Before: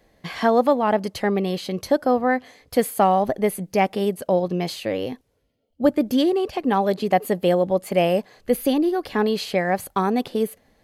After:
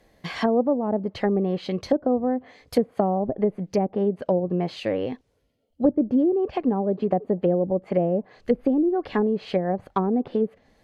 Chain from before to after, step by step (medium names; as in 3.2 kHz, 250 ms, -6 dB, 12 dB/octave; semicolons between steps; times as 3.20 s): low-pass that closes with the level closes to 480 Hz, closed at -16.5 dBFS